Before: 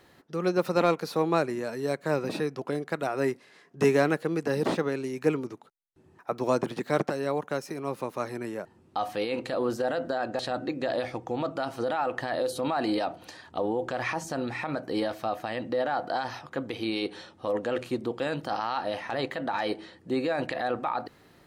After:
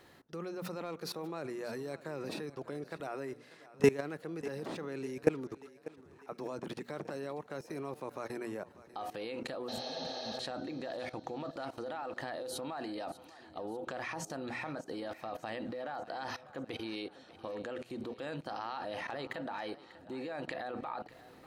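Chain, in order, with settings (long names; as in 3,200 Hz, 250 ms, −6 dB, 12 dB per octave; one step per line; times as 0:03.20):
mains-hum notches 60/120/180/240 Hz
output level in coarse steps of 20 dB
healed spectral selection 0:09.71–0:10.35, 280–6,500 Hz after
feedback echo with a high-pass in the loop 594 ms, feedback 53%, high-pass 180 Hz, level −17 dB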